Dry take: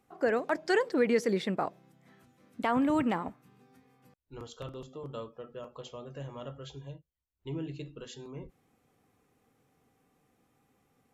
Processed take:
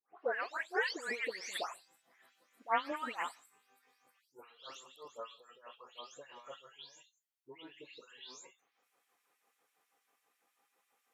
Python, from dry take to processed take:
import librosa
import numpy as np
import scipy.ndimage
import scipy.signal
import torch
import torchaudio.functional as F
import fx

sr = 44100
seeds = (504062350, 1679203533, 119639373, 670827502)

y = fx.spec_delay(x, sr, highs='late', ms=334)
y = fx.filter_lfo_highpass(y, sr, shape='sine', hz=6.1, low_hz=650.0, high_hz=2100.0, q=0.84)